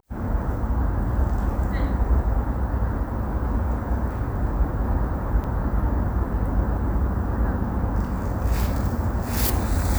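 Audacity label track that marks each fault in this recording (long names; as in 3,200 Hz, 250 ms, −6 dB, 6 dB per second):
5.440000	5.450000	drop-out 5.4 ms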